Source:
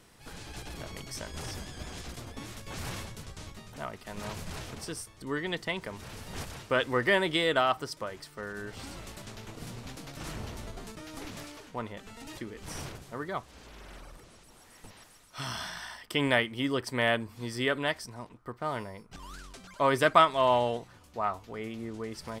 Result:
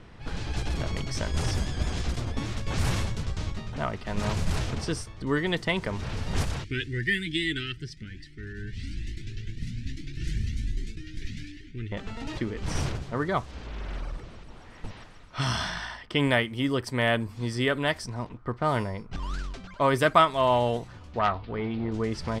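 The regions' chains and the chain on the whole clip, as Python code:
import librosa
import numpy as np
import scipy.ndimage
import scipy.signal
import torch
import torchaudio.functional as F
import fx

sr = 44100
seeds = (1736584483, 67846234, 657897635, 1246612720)

y = fx.chain(x, sr, fx.ellip_bandstop(low_hz=350.0, high_hz=1800.0, order=3, stop_db=40),
    fx.comb_cascade(direction='rising', hz=1.2), at=(6.64, 11.92))
y = fx.chain(y, sr, fx.steep_lowpass(hz=4600.0, slope=48),
    fx.transformer_sat(knee_hz=1400.0), at=(21.19, 21.92))
y = fx.low_shelf(y, sr, hz=150.0, db=10.0)
y = fx.env_lowpass(y, sr, base_hz=2900.0, full_db=-25.5)
y = fx.rider(y, sr, range_db=3, speed_s=0.5)
y = y * librosa.db_to_amplitude(4.0)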